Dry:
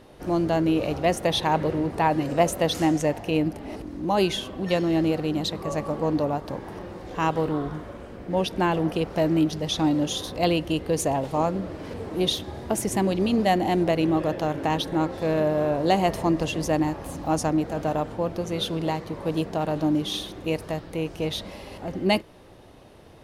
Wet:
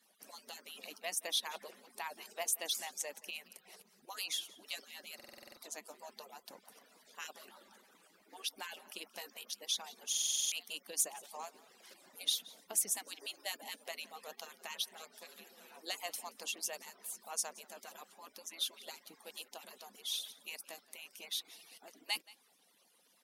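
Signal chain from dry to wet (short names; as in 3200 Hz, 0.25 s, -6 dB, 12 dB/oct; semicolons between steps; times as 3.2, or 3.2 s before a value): median-filter separation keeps percussive; differentiator; in parallel at -8.5 dB: soft clip -29 dBFS, distortion -11 dB; on the sum: resonant low shelf 150 Hz -7.5 dB, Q 3; on a send: echo 0.175 s -21.5 dB; on the sum: stuck buffer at 5.15/10.1, samples 2048, times 8; gain -3.5 dB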